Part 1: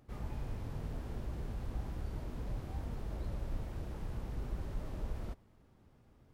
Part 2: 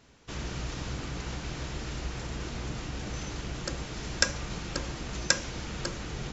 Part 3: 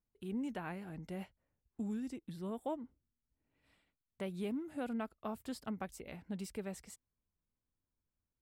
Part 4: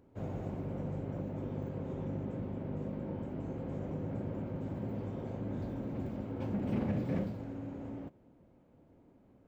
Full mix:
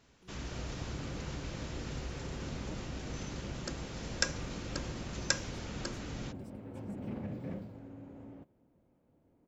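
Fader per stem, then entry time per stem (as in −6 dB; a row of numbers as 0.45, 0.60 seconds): −16.0, −6.0, −17.5, −7.0 decibels; 0.20, 0.00, 0.00, 0.35 seconds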